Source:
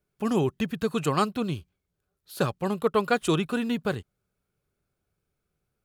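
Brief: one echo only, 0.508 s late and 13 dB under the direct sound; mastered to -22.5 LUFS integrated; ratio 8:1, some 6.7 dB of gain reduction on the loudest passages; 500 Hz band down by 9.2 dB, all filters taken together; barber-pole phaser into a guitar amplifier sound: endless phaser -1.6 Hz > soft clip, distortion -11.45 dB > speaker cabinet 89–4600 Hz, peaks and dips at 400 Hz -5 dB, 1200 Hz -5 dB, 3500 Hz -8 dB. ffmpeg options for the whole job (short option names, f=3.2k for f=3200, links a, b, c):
-filter_complex "[0:a]equalizer=f=500:t=o:g=-8,acompressor=threshold=-28dB:ratio=8,aecho=1:1:508:0.224,asplit=2[a][b];[b]afreqshift=-1.6[c];[a][c]amix=inputs=2:normalize=1,asoftclip=threshold=-33.5dB,highpass=89,equalizer=f=400:t=q:w=4:g=-5,equalizer=f=1.2k:t=q:w=4:g=-5,equalizer=f=3.5k:t=q:w=4:g=-8,lowpass=f=4.6k:w=0.5412,lowpass=f=4.6k:w=1.3066,volume=19.5dB"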